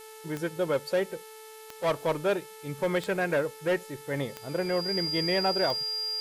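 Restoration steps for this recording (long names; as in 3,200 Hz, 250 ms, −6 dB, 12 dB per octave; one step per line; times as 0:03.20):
click removal
hum removal 437.8 Hz, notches 12
notch filter 4,800 Hz, Q 30
noise reduction from a noise print 27 dB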